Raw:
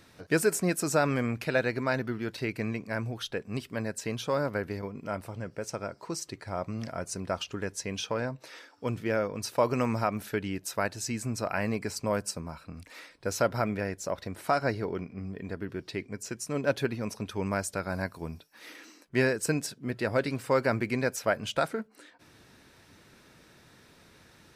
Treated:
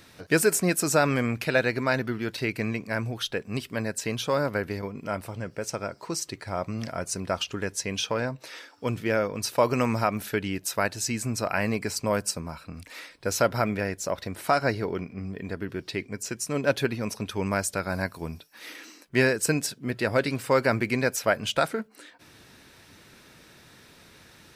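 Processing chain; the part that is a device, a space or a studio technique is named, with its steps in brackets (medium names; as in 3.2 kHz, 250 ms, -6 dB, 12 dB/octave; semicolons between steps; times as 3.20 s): presence and air boost (peaking EQ 3 kHz +3 dB 1.7 oct; treble shelf 9.1 kHz +6 dB); trim +3 dB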